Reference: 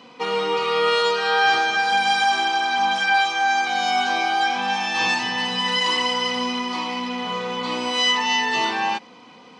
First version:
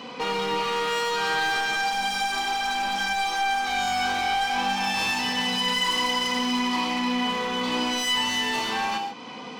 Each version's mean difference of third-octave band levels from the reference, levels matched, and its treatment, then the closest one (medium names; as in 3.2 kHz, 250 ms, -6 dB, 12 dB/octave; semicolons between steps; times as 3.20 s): 6.0 dB: in parallel at +1.5 dB: peak limiter -18 dBFS, peak gain reduction 9 dB; on the sum: compression 1.5:1, threshold -35 dBFS, peak gain reduction 8.5 dB; hard clipper -23 dBFS, distortion -12 dB; gated-style reverb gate 170 ms flat, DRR 3.5 dB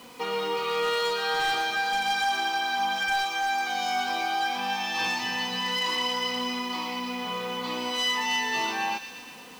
4.0 dB: in parallel at +1 dB: compression, threshold -33 dBFS, peak gain reduction 17.5 dB; on the sum: bit crusher 7-bit; wavefolder -11.5 dBFS; feedback echo behind a high-pass 120 ms, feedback 71%, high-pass 2.2 kHz, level -8 dB; trim -8.5 dB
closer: second